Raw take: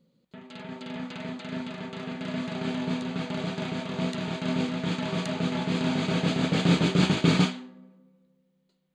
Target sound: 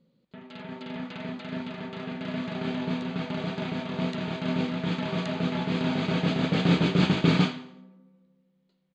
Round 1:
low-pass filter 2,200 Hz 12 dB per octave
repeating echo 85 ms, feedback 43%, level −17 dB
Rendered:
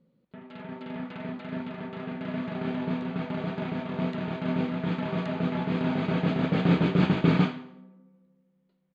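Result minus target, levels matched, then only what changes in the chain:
4,000 Hz band −6.5 dB
change: low-pass filter 4,500 Hz 12 dB per octave

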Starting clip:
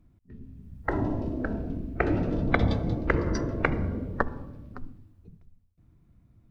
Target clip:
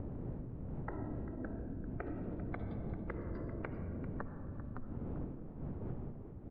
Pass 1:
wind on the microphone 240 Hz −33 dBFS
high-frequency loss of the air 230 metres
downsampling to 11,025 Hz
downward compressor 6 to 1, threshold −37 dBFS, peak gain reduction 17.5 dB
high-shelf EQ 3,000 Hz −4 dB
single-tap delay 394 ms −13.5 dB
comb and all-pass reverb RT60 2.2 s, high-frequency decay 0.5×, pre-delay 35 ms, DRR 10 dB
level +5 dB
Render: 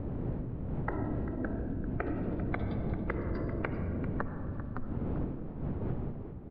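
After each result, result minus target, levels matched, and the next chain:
downward compressor: peak gain reduction −7.5 dB; 4,000 Hz band +5.5 dB
wind on the microphone 240 Hz −33 dBFS
high-frequency loss of the air 230 metres
downsampling to 11,025 Hz
downward compressor 6 to 1, threshold −46 dBFS, peak gain reduction 25 dB
high-shelf EQ 3,000 Hz −4 dB
single-tap delay 394 ms −13.5 dB
comb and all-pass reverb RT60 2.2 s, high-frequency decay 0.5×, pre-delay 35 ms, DRR 10 dB
level +5 dB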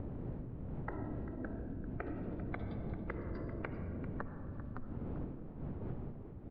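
4,000 Hz band +5.0 dB
wind on the microphone 240 Hz −33 dBFS
high-frequency loss of the air 230 metres
downsampling to 11,025 Hz
downward compressor 6 to 1, threshold −46 dBFS, peak gain reduction 25 dB
high-shelf EQ 3,000 Hz −14 dB
single-tap delay 394 ms −13.5 dB
comb and all-pass reverb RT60 2.2 s, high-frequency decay 0.5×, pre-delay 35 ms, DRR 10 dB
level +5 dB

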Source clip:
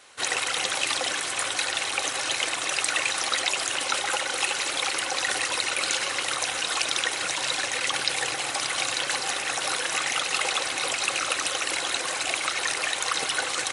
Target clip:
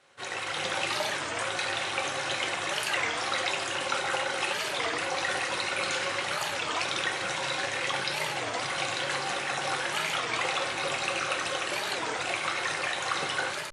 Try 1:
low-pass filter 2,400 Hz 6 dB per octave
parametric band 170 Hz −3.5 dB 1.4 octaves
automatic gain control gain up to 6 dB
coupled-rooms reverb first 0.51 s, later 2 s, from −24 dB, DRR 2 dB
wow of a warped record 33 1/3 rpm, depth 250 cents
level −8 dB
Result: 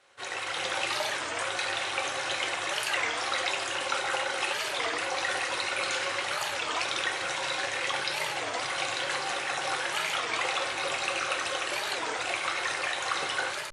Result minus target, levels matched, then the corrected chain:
125 Hz band −6.0 dB
low-pass filter 2,400 Hz 6 dB per octave
parametric band 170 Hz +5 dB 1.4 octaves
automatic gain control gain up to 6 dB
coupled-rooms reverb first 0.51 s, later 2 s, from −24 dB, DRR 2 dB
wow of a warped record 33 1/3 rpm, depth 250 cents
level −8 dB

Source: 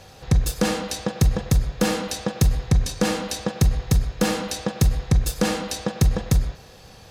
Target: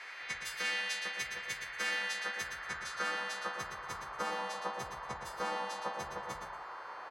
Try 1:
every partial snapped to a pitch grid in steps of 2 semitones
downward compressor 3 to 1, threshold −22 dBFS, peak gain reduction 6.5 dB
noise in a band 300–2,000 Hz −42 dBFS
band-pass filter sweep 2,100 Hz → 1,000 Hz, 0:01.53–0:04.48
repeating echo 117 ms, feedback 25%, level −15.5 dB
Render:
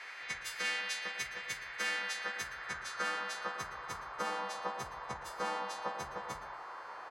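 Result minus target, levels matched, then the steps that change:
echo-to-direct −9 dB
change: repeating echo 117 ms, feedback 25%, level −6.5 dB

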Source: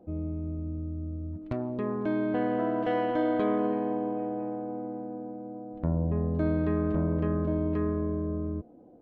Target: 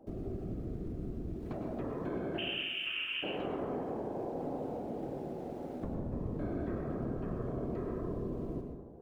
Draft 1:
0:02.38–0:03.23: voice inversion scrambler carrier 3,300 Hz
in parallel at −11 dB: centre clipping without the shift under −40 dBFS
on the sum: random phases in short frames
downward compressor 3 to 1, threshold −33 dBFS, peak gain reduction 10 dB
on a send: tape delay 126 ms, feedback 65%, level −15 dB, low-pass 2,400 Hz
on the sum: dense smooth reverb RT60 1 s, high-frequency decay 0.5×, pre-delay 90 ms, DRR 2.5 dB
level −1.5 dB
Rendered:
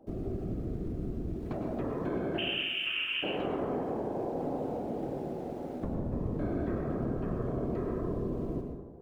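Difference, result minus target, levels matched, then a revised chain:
downward compressor: peak gain reduction −4 dB
0:02.38–0:03.23: voice inversion scrambler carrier 3,300 Hz
in parallel at −11 dB: centre clipping without the shift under −40 dBFS
on the sum: random phases in short frames
downward compressor 3 to 1, threshold −39 dBFS, peak gain reduction 14 dB
on a send: tape delay 126 ms, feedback 65%, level −15 dB, low-pass 2,400 Hz
on the sum: dense smooth reverb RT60 1 s, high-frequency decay 0.5×, pre-delay 90 ms, DRR 2.5 dB
level −1.5 dB

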